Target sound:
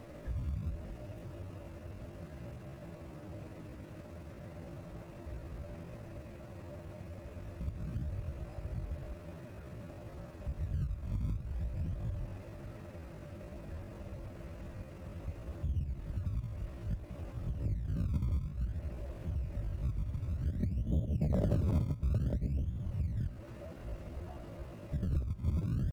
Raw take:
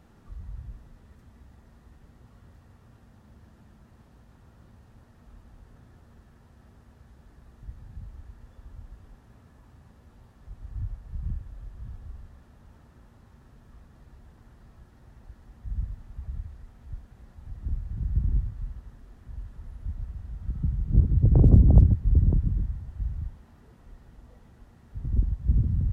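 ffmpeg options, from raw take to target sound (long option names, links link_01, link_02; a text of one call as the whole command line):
ffmpeg -i in.wav -filter_complex "[0:a]asplit=2[link_01][link_02];[link_02]acrusher=samples=38:mix=1:aa=0.000001:lfo=1:lforange=38:lforate=0.56,volume=-10dB[link_03];[link_01][link_03]amix=inputs=2:normalize=0,acompressor=threshold=-37dB:ratio=4,asetrate=64194,aresample=44100,atempo=0.686977,equalizer=frequency=590:width_type=o:width=0.32:gain=14,volume=4dB" out.wav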